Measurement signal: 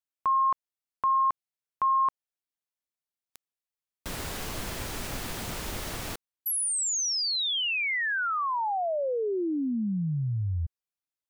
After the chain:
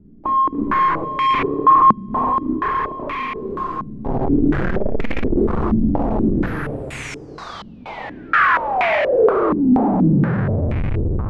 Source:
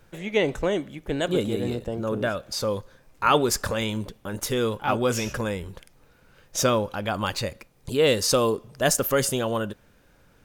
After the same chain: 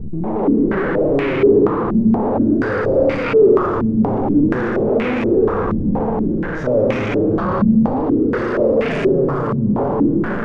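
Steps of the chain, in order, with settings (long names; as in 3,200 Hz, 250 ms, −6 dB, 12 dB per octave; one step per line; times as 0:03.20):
peak hold with a decay on every bin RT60 1.78 s
low shelf with overshoot 540 Hz +13.5 dB, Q 1.5
mains-hum notches 60/120/180/240/300/360/420/480/540 Hz
reversed playback
downward compressor 6 to 1, threshold −22 dBFS
reversed playback
brickwall limiter −17.5 dBFS
four-comb reverb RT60 2.6 s, combs from 28 ms, DRR −2.5 dB
flanger 0.36 Hz, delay 2.1 ms, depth 5.7 ms, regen +36%
power curve on the samples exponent 0.35
low-pass on a step sequencer 4.2 Hz 210–2,300 Hz
level −2.5 dB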